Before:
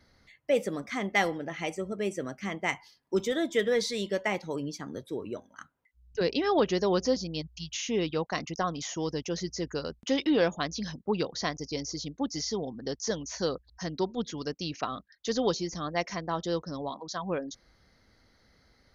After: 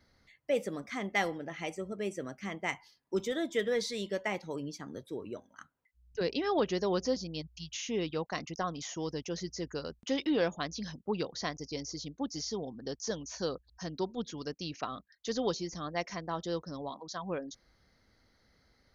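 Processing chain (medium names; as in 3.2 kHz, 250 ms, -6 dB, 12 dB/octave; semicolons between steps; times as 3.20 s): 12.10–14.36 s: band-stop 2 kHz, Q 10; trim -4.5 dB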